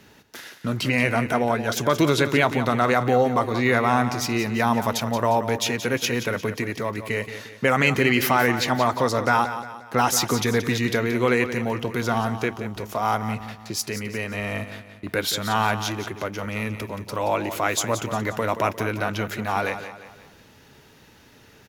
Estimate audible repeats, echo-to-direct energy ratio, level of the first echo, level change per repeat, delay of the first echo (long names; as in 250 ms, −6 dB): 4, −10.0 dB, −11.0 dB, −7.5 dB, 177 ms